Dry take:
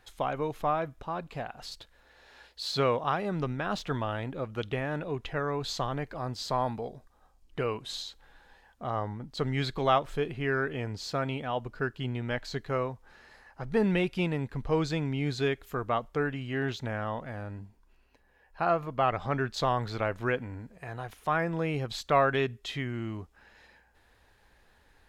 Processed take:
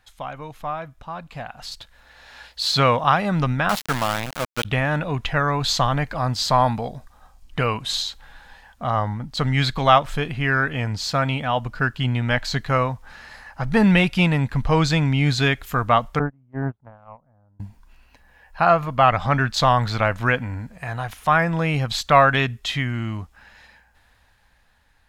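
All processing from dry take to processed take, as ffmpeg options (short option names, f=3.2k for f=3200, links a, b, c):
-filter_complex "[0:a]asettb=1/sr,asplit=3[a][b][c];[a]atrim=end=3.694[d];[b]atrim=start=3.69:end=4.65,asetpts=PTS-STARTPTS,afade=t=in:d=0.004:c=qsin,afade=t=out:st=0.956:d=0.004:c=qsin,highpass=180,aeval=exprs='val(0)*gte(abs(val(0)),0.0211)':c=same[e];[c]atrim=start=4.646[f];[d][e]acrossfade=d=0.004:c1=hsin:c2=qsin[g];[g][f]acrossfade=d=0.004:c1=qsin:c2=hsin,asettb=1/sr,asplit=3[h][i][j];[h]atrim=end=16.194[k];[i]atrim=start=16.19:end=17.6,asetpts=PTS-STARTPTS,afade=t=in:d=0.004:c=qsin,afade=t=out:st=1.406:d=0.004:c=qsin,lowpass=f=1.1k:w=0.5412,lowpass=f=1.1k:w=1.3066,agate=range=-31dB:threshold=-31dB:ratio=16:release=100:detection=peak[l];[j]atrim=start=17.596[m];[k][l]acrossfade=d=0.004:c1=hsin:c2=qsin[n];[n][m]acrossfade=d=0.004:c1=qsin:c2=hsin,equalizer=f=390:t=o:w=0.81:g=-12.5,dynaudnorm=f=420:g=9:m=13dB,volume=1dB"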